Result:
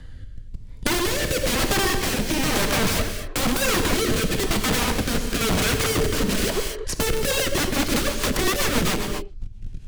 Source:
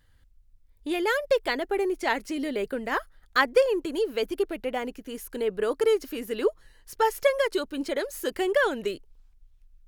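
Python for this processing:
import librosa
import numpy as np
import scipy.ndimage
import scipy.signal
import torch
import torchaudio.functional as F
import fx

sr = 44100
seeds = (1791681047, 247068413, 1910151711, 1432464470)

y = fx.rider(x, sr, range_db=4, speed_s=2.0)
y = fx.env_lowpass_down(y, sr, base_hz=790.0, full_db=-20.5)
y = y + 10.0 ** (-22.5 / 20.0) * np.pad(y, (int(122 * sr / 1000.0), 0))[:len(y)]
y = fx.leveller(y, sr, passes=3)
y = scipy.signal.sosfilt(scipy.signal.butter(2, 8200.0, 'lowpass', fs=sr, output='sos'), y)
y = (np.mod(10.0 ** (23.5 / 20.0) * y + 1.0, 2.0) - 1.0) / 10.0 ** (23.5 / 20.0)
y = fx.low_shelf(y, sr, hz=310.0, db=11.5)
y = fx.rev_gated(y, sr, seeds[0], gate_ms=270, shape='flat', drr_db=5.5)
y = fx.rotary_switch(y, sr, hz=1.0, then_hz=7.5, switch_at_s=7.04)
y = fx.band_squash(y, sr, depth_pct=70)
y = y * 10.0 ** (5.0 / 20.0)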